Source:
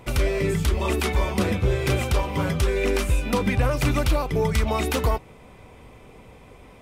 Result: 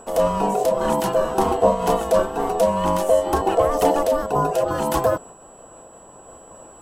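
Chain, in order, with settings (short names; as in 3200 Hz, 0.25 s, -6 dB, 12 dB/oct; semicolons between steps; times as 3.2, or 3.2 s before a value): wow and flutter 51 cents; ring modulator 580 Hz; ten-band EQ 125 Hz -5 dB, 250 Hz +3 dB, 1000 Hz +4 dB, 2000 Hz -11 dB, 4000 Hz -6 dB; whine 7800 Hz -52 dBFS; noise-modulated level, depth 55%; gain +7.5 dB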